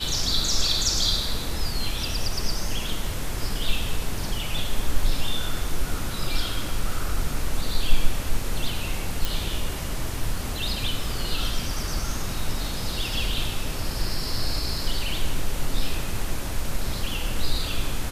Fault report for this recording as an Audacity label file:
9.250000	9.250000	pop

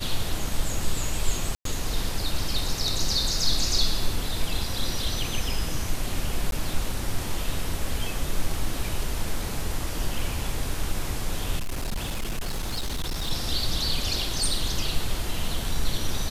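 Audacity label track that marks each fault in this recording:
1.550000	1.650000	dropout 103 ms
6.510000	6.520000	dropout 12 ms
11.580000	13.310000	clipped -24.5 dBFS

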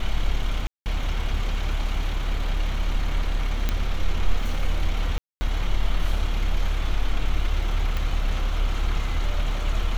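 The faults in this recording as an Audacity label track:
0.670000	0.860000	dropout 189 ms
3.690000	3.690000	pop -10 dBFS
5.180000	5.410000	dropout 230 ms
7.970000	7.970000	pop

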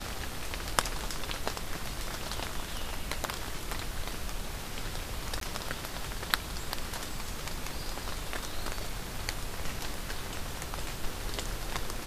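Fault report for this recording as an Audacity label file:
5.400000	5.410000	dropout 13 ms

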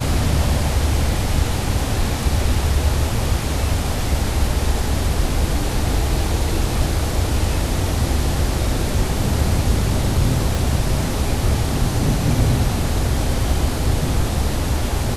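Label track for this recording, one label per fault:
10.550000	10.550000	pop

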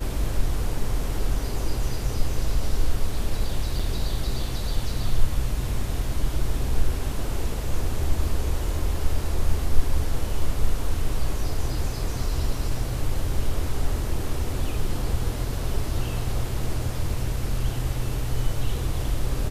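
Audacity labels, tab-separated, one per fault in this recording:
3.790000	3.800000	dropout 5.1 ms

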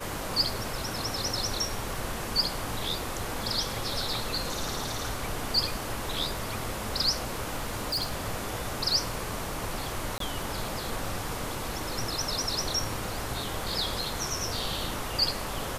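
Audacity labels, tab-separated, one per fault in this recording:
7.540000	8.160000	clipped -25.5 dBFS
10.180000	10.200000	dropout 23 ms

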